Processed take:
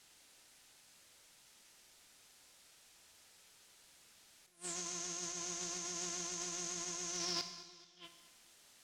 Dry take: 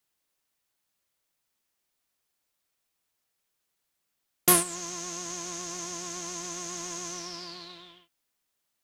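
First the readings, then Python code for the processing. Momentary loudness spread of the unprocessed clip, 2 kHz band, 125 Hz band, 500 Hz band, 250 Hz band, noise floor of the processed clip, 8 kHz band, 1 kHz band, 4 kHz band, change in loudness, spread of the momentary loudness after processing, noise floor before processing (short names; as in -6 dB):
18 LU, -10.5 dB, -12.0 dB, -13.0 dB, -13.0 dB, -65 dBFS, -8.5 dB, -14.0 dB, -5.5 dB, -10.5 dB, 18 LU, -80 dBFS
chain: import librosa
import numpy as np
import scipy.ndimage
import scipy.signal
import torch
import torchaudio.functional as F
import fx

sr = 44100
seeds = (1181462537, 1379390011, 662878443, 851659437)

p1 = scipy.signal.sosfilt(scipy.signal.butter(2, 8700.0, 'lowpass', fs=sr, output='sos'), x)
p2 = fx.high_shelf(p1, sr, hz=2500.0, db=4.5)
p3 = fx.notch(p2, sr, hz=1100.0, q=14.0)
p4 = fx.over_compress(p3, sr, threshold_db=-43.0, ratio=-0.5)
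p5 = fx.gate_flip(p4, sr, shuts_db=-29.0, range_db=-37)
p6 = 10.0 ** (-31.0 / 20.0) * np.tanh(p5 / 10.0 ** (-31.0 / 20.0))
p7 = p6 + fx.echo_feedback(p6, sr, ms=216, feedback_pct=46, wet_db=-17, dry=0)
p8 = fx.rev_schroeder(p7, sr, rt60_s=1.0, comb_ms=30, drr_db=8.0)
y = p8 * 10.0 ** (5.0 / 20.0)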